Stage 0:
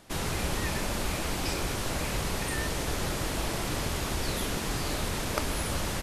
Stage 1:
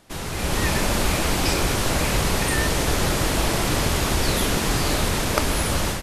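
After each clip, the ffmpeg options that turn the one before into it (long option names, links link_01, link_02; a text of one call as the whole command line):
ffmpeg -i in.wav -af "dynaudnorm=framelen=310:gausssize=3:maxgain=9.5dB" out.wav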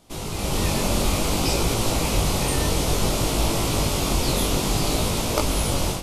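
ffmpeg -i in.wav -af "equalizer=frequency=1700:width=2.5:gain=-12,flanger=delay=17.5:depth=4.7:speed=0.58,volume=3dB" out.wav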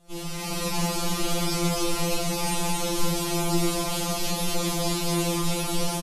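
ffmpeg -i in.wav -filter_complex "[0:a]alimiter=limit=-14dB:level=0:latency=1,asplit=2[link_01][link_02];[link_02]aecho=0:1:40.82|212.8|271.1:1|0.355|0.794[link_03];[link_01][link_03]amix=inputs=2:normalize=0,afftfilt=real='re*2.83*eq(mod(b,8),0)':imag='im*2.83*eq(mod(b,8),0)':win_size=2048:overlap=0.75,volume=-3.5dB" out.wav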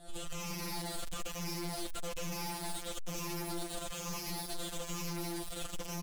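ffmpeg -i in.wav -af "afftfilt=real='re*pow(10,13/40*sin(2*PI*(0.8*log(max(b,1)*sr/1024/100)/log(2)-(-1.1)*(pts-256)/sr)))':imag='im*pow(10,13/40*sin(2*PI*(0.8*log(max(b,1)*sr/1024/100)/log(2)-(-1.1)*(pts-256)/sr)))':win_size=1024:overlap=0.75,aeval=exprs='(tanh(39.8*val(0)+0.6)-tanh(0.6))/39.8':channel_layout=same,alimiter=level_in=15.5dB:limit=-24dB:level=0:latency=1:release=21,volume=-15.5dB,volume=5.5dB" out.wav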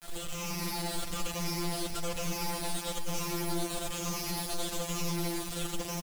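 ffmpeg -i in.wav -af "acrusher=bits=7:mix=0:aa=0.000001,aecho=1:1:89|459:0.282|0.376,volume=3.5dB" out.wav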